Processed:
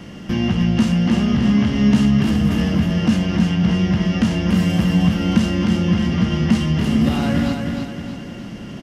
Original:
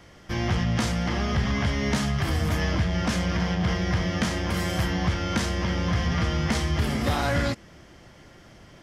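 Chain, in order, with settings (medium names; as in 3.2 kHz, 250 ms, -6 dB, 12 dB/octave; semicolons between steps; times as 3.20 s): compression 2:1, threshold -40 dBFS, peak gain reduction 11.5 dB; small resonant body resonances 210/2800 Hz, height 16 dB, ringing for 30 ms; on a send: feedback delay 309 ms, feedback 47%, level -5 dB; on the sum: trim +7.5 dB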